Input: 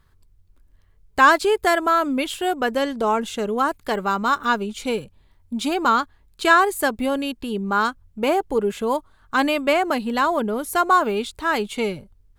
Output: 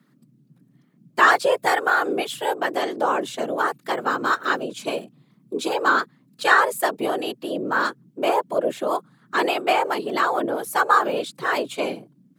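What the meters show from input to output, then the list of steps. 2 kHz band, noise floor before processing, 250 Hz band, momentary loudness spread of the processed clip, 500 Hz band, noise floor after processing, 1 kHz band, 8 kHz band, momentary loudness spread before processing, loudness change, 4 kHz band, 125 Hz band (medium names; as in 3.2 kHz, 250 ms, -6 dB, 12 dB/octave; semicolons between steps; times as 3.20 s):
+0.5 dB, -57 dBFS, -5.5 dB, 11 LU, -1.5 dB, -60 dBFS, -1.0 dB, -1.5 dB, 11 LU, -1.0 dB, -1.0 dB, no reading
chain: whisper effect; frequency shift +120 Hz; trim -1.5 dB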